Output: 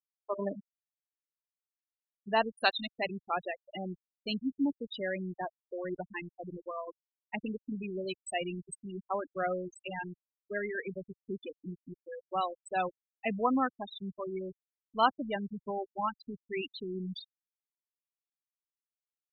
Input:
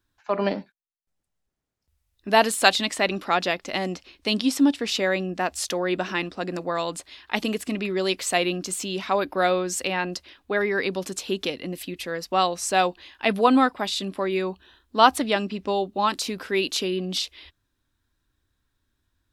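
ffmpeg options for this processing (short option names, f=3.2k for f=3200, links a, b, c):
-af "afftfilt=real='re*gte(hypot(re,im),0.2)':imag='im*gte(hypot(re,im),0.2)':win_size=1024:overlap=0.75,asubboost=boost=4.5:cutoff=130,volume=-9dB"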